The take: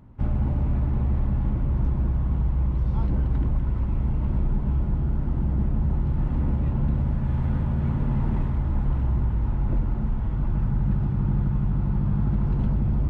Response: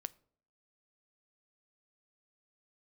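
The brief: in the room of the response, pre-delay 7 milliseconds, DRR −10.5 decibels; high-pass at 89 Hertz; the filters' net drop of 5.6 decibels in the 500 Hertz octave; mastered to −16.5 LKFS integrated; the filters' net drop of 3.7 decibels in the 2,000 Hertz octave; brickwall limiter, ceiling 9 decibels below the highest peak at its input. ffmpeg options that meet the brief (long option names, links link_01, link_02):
-filter_complex "[0:a]highpass=89,equalizer=frequency=500:width_type=o:gain=-8,equalizer=frequency=2000:width_type=o:gain=-4.5,alimiter=level_in=1dB:limit=-24dB:level=0:latency=1,volume=-1dB,asplit=2[link_01][link_02];[1:a]atrim=start_sample=2205,adelay=7[link_03];[link_02][link_03]afir=irnorm=-1:irlink=0,volume=13.5dB[link_04];[link_01][link_04]amix=inputs=2:normalize=0,volume=5.5dB"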